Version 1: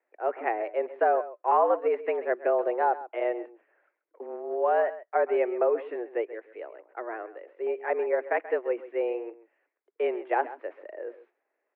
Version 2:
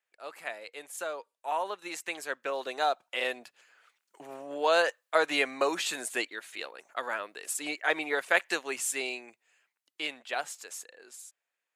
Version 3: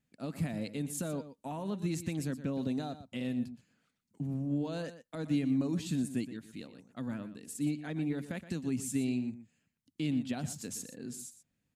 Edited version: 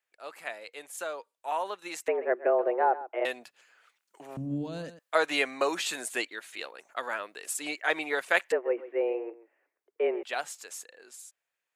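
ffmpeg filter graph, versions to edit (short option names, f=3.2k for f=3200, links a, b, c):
-filter_complex "[0:a]asplit=2[a][b];[1:a]asplit=4[c][d][e][f];[c]atrim=end=2.082[g];[a]atrim=start=2.078:end=3.252[h];[d]atrim=start=3.248:end=4.372[i];[2:a]atrim=start=4.368:end=4.992[j];[e]atrim=start=4.988:end=8.522[k];[b]atrim=start=8.518:end=10.232[l];[f]atrim=start=10.228[m];[g][h]acrossfade=d=0.004:c1=hsin:c2=hsin[n];[n][i]acrossfade=d=0.004:c1=hsin:c2=hsin[o];[o][j]acrossfade=d=0.004:c1=hsin:c2=hsin[p];[p][k]acrossfade=d=0.004:c1=hsin:c2=hsin[q];[q][l]acrossfade=d=0.004:c1=hsin:c2=hsin[r];[r][m]acrossfade=d=0.004:c1=hsin:c2=hsin"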